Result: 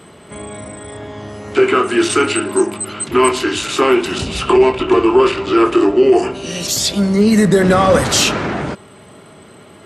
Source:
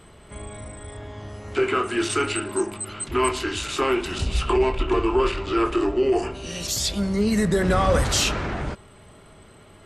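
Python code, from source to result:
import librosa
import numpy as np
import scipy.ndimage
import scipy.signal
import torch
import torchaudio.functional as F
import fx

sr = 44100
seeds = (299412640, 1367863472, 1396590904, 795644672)

y = scipy.signal.sosfilt(scipy.signal.butter(2, 190.0, 'highpass', fs=sr, output='sos'), x)
y = fx.low_shelf(y, sr, hz=270.0, db=7.0)
y = y * 10.0 ** (8.0 / 20.0)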